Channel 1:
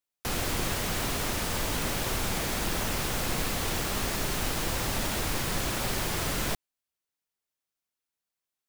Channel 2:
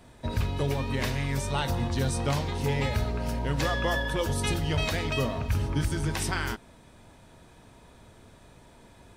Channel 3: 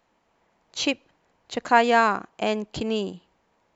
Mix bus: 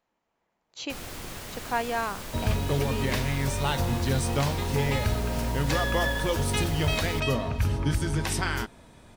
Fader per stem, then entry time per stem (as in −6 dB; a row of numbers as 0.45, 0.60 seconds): −9.0, +1.5, −10.5 decibels; 0.65, 2.10, 0.00 seconds